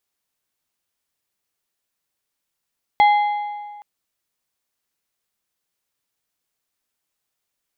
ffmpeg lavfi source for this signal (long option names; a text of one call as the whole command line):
ffmpeg -f lavfi -i "aevalsrc='0.355*pow(10,-3*t/1.72)*sin(2*PI*829*t)+0.119*pow(10,-3*t/1.307)*sin(2*PI*2072.5*t)+0.0398*pow(10,-3*t/1.135)*sin(2*PI*3316*t)+0.0133*pow(10,-3*t/1.061)*sin(2*PI*4145*t)':duration=0.82:sample_rate=44100" out.wav